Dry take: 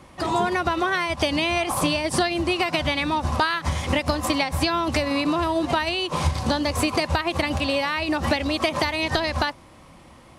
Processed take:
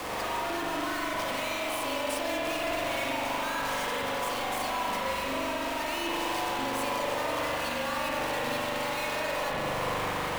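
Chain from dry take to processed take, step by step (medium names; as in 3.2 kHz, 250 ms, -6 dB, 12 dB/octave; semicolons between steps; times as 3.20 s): high-pass 410 Hz 24 dB/octave; compression 6:1, threshold -34 dBFS, peak gain reduction 16.5 dB; peak limiter -30.5 dBFS, peak gain reduction 9.5 dB; Schmitt trigger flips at -56.5 dBFS; frequency shift -31 Hz; spring tank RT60 3.5 s, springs 41 ms, chirp 65 ms, DRR -5 dB; trim +4 dB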